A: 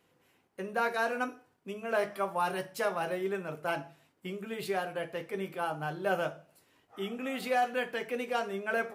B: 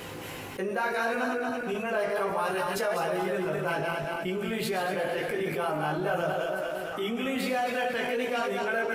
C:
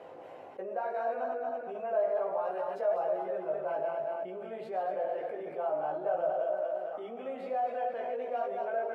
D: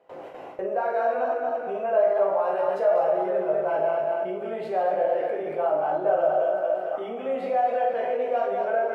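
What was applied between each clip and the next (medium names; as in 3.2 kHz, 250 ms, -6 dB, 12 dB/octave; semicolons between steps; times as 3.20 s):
backward echo that repeats 115 ms, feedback 62%, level -5 dB; chorus voices 4, 0.62 Hz, delay 18 ms, depth 1.8 ms; level flattener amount 70%
band-pass filter 640 Hz, Q 3.8; trim +2 dB
gate with hold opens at -38 dBFS; reverberation RT60 0.35 s, pre-delay 28 ms, DRR 4 dB; trim +8 dB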